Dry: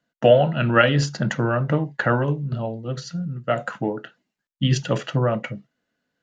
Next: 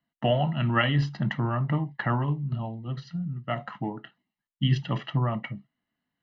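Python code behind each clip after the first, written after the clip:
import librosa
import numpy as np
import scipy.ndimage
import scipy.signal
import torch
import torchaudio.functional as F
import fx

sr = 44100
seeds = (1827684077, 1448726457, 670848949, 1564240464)

y = scipy.signal.sosfilt(scipy.signal.butter(4, 3900.0, 'lowpass', fs=sr, output='sos'), x)
y = y + 0.71 * np.pad(y, (int(1.0 * sr / 1000.0), 0))[:len(y)]
y = F.gain(torch.from_numpy(y), -7.0).numpy()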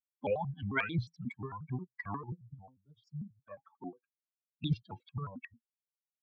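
y = fx.bin_expand(x, sr, power=3.0)
y = fx.peak_eq(y, sr, hz=4000.0, db=-7.5, octaves=0.29)
y = fx.vibrato_shape(y, sr, shape='square', rate_hz=5.6, depth_cents=250.0)
y = F.gain(torch.from_numpy(y), -4.5).numpy()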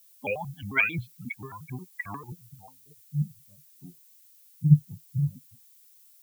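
y = fx.filter_sweep_lowpass(x, sr, from_hz=2500.0, to_hz=150.0, start_s=2.43, end_s=3.19, q=7.3)
y = fx.dmg_noise_colour(y, sr, seeds[0], colour='violet', level_db=-57.0)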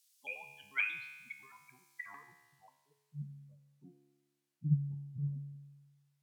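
y = fx.filter_sweep_bandpass(x, sr, from_hz=4900.0, to_hz=520.0, start_s=1.88, end_s=3.56, q=0.77)
y = fx.comb_fb(y, sr, f0_hz=71.0, decay_s=1.3, harmonics='all', damping=0.0, mix_pct=80)
y = F.gain(torch.from_numpy(y), 6.5).numpy()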